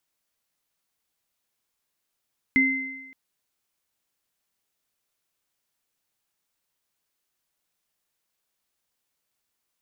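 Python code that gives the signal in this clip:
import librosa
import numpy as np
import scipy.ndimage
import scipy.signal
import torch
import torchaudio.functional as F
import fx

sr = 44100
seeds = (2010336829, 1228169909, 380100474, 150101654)

y = fx.additive_free(sr, length_s=0.57, hz=266.0, level_db=-19.0, upper_db=(3,), decay_s=0.95, upper_decays_s=(1.13,), upper_hz=(2070.0,))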